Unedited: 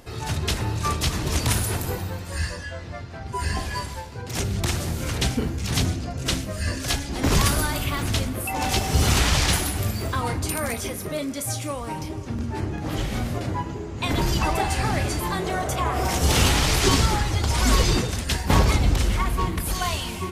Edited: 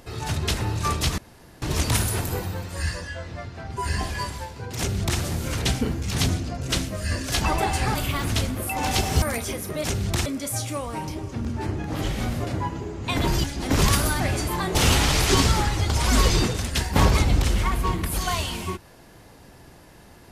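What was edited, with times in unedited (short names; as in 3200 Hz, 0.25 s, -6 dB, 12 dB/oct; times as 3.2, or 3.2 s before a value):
1.18 insert room tone 0.44 s
4.34–4.76 copy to 11.2
6.97–7.73 swap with 14.38–14.92
9–10.58 cut
15.47–16.29 cut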